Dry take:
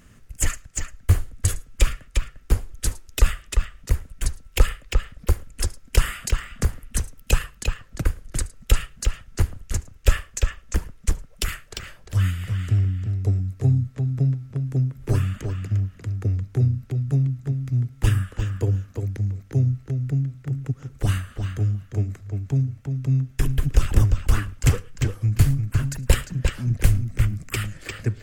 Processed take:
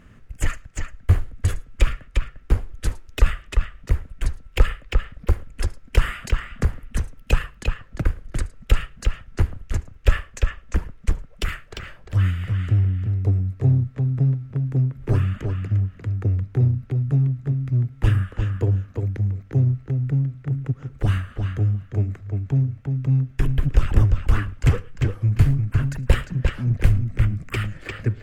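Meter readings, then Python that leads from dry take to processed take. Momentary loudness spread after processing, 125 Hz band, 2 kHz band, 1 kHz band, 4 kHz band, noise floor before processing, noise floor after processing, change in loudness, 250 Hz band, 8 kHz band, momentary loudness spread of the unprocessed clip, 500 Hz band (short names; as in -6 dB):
10 LU, +1.5 dB, +1.0 dB, +1.5 dB, -3.0 dB, -50 dBFS, -48 dBFS, +1.5 dB, +1.5 dB, under -10 dB, 8 LU, +1.0 dB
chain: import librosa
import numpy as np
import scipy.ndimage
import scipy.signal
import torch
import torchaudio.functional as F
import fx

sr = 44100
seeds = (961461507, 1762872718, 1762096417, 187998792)

p1 = fx.bass_treble(x, sr, bass_db=0, treble_db=-14)
p2 = np.clip(10.0 ** (22.0 / 20.0) * p1, -1.0, 1.0) / 10.0 ** (22.0 / 20.0)
y = p1 + (p2 * 10.0 ** (-9.0 / 20.0))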